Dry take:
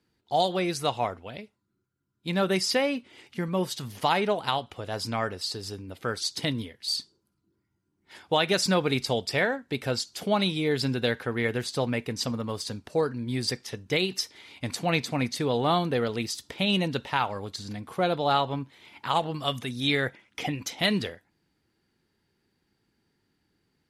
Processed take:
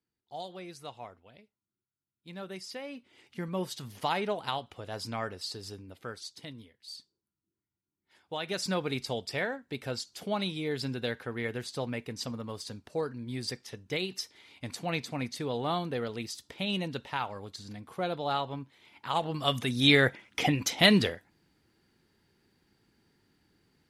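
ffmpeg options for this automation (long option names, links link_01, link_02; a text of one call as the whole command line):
ffmpeg -i in.wav -af "volume=14dB,afade=type=in:start_time=2.82:duration=0.61:silence=0.298538,afade=type=out:start_time=5.72:duration=0.64:silence=0.316228,afade=type=in:start_time=8.23:duration=0.5:silence=0.354813,afade=type=in:start_time=19.05:duration=0.8:silence=0.281838" out.wav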